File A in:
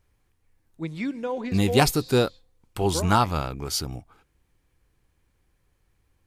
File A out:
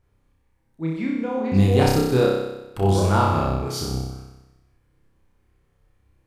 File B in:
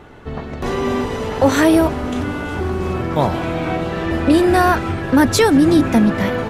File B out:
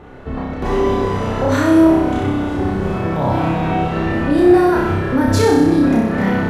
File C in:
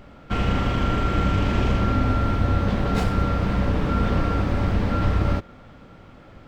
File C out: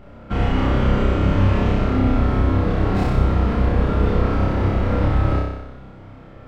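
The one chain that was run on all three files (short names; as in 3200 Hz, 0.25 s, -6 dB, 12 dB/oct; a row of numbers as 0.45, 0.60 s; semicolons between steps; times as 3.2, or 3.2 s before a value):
high shelf 2300 Hz -9.5 dB; limiter -12.5 dBFS; on a send: flutter echo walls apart 5.3 m, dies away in 0.99 s; on the sum: gain +1 dB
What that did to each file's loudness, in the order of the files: +3.0, +1.0, +3.5 LU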